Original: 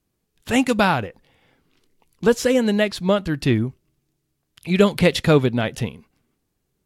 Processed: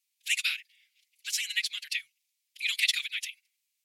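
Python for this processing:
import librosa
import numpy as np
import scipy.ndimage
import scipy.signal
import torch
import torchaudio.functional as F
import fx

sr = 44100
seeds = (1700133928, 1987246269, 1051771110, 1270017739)

y = scipy.signal.sosfilt(scipy.signal.ellip(4, 1.0, 70, 2200.0, 'highpass', fs=sr, output='sos'), x)
y = y + 0.9 * np.pad(y, (int(6.8 * sr / 1000.0), 0))[:len(y)]
y = fx.stretch_vocoder(y, sr, factor=0.56)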